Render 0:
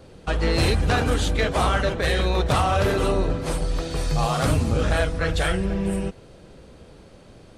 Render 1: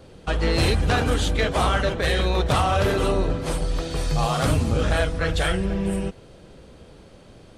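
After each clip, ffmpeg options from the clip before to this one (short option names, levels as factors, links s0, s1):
-af "equalizer=f=3200:t=o:w=0.25:g=2.5"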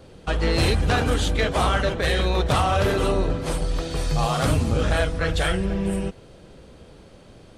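-af "aeval=exprs='0.282*(cos(1*acos(clip(val(0)/0.282,-1,1)))-cos(1*PI/2))+0.00316*(cos(4*acos(clip(val(0)/0.282,-1,1)))-cos(4*PI/2))':c=same"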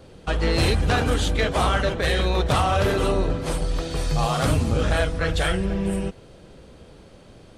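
-af anull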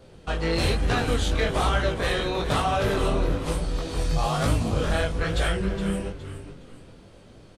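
-filter_complex "[0:a]flanger=delay=17:depth=7.8:speed=1.1,asplit=5[s0][s1][s2][s3][s4];[s1]adelay=415,afreqshift=-100,volume=0.282[s5];[s2]adelay=830,afreqshift=-200,volume=0.0933[s6];[s3]adelay=1245,afreqshift=-300,volume=0.0305[s7];[s4]adelay=1660,afreqshift=-400,volume=0.0101[s8];[s0][s5][s6][s7][s8]amix=inputs=5:normalize=0"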